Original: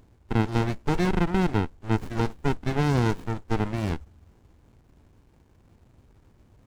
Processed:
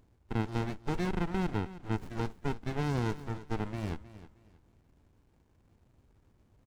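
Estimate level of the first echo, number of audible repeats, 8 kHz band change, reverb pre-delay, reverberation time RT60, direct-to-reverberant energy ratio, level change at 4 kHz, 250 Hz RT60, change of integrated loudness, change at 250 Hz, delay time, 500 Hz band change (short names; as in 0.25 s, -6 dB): -15.5 dB, 2, -8.5 dB, none, none, none, -8.5 dB, none, -8.5 dB, -8.5 dB, 0.314 s, -8.5 dB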